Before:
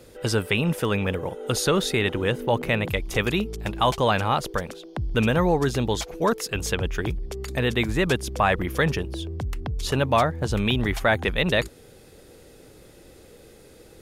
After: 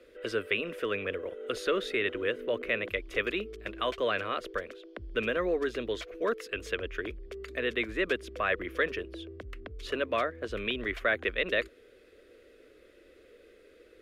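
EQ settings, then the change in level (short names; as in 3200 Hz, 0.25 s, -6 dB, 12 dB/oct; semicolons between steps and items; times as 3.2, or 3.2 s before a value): three-band isolator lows -13 dB, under 440 Hz, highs -21 dB, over 2900 Hz; fixed phaser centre 350 Hz, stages 4; 0.0 dB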